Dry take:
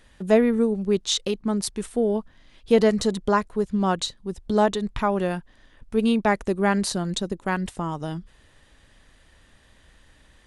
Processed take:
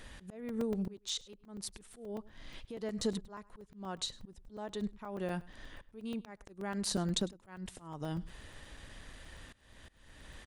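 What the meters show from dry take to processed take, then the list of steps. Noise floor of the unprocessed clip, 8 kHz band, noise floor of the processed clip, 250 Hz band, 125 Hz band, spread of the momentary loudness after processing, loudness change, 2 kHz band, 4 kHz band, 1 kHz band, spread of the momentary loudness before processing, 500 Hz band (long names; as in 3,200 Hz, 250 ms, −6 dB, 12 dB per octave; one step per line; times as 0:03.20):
−57 dBFS, −10.0 dB, −64 dBFS, −15.5 dB, −11.5 dB, 18 LU, −16.0 dB, −18.0 dB, −10.5 dB, −20.5 dB, 10 LU, −19.0 dB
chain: downward compressor 5 to 1, threshold −35 dBFS, peak gain reduction 20 dB
volume swells 446 ms
on a send: single-tap delay 103 ms −22 dB
on the sum: regular buffer underruns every 0.12 s, samples 128, zero, from 0:00.49
level +4.5 dB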